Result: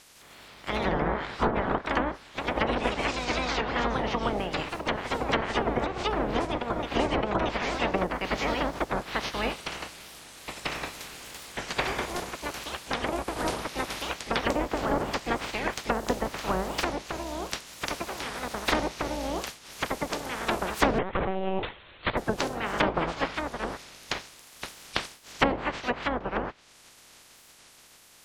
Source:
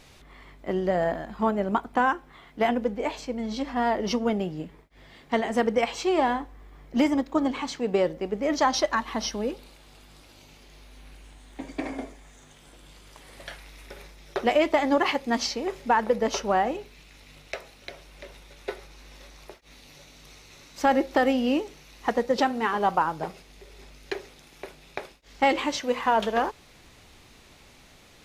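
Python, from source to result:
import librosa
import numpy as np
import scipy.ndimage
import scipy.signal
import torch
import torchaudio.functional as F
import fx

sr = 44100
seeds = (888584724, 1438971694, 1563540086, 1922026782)

y = fx.spec_clip(x, sr, under_db=27)
y = fx.env_lowpass_down(y, sr, base_hz=690.0, full_db=-19.5)
y = fx.rider(y, sr, range_db=5, speed_s=0.5)
y = fx.echo_pitch(y, sr, ms=155, semitones=2, count=2, db_per_echo=-3.0)
y = fx.lpc_monotone(y, sr, seeds[0], pitch_hz=190.0, order=16, at=(20.99, 22.19))
y = fx.record_warp(y, sr, rpm=45.0, depth_cents=250.0)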